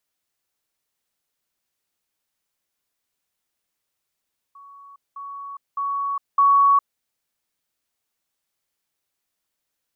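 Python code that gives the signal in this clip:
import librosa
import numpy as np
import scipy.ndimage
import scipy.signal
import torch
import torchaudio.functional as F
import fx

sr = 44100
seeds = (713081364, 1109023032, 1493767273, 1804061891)

y = fx.level_ladder(sr, hz=1120.0, from_db=-42.0, step_db=10.0, steps=4, dwell_s=0.41, gap_s=0.2)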